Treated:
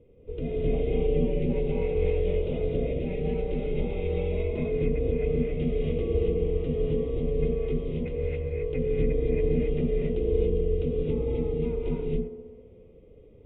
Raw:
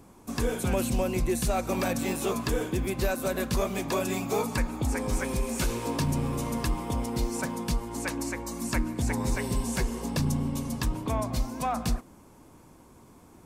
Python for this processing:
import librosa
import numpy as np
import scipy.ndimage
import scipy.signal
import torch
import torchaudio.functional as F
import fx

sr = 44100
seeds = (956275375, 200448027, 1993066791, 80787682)

y = fx.formant_cascade(x, sr, vowel='i')
y = fx.low_shelf(y, sr, hz=66.0, db=8.0)
y = y * np.sin(2.0 * np.pi * 200.0 * np.arange(len(y)) / sr)
y = fx.echo_wet_bandpass(y, sr, ms=65, feedback_pct=75, hz=570.0, wet_db=-9.5)
y = fx.rev_gated(y, sr, seeds[0], gate_ms=300, shape='rising', drr_db=-4.0)
y = y * librosa.db_to_amplitude(5.5)